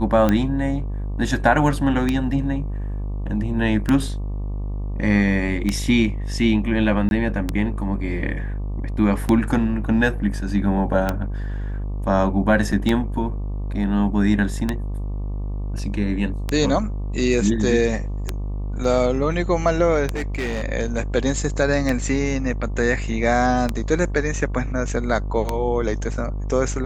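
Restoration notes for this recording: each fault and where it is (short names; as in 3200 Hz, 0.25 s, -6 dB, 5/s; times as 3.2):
buzz 50 Hz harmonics 24 -26 dBFS
tick 33 1/3 rpm -7 dBFS
7.09–7.11 gap 21 ms
12.72 gap 4.7 ms
18.84 gap 3.1 ms
20.14–20.64 clipped -21 dBFS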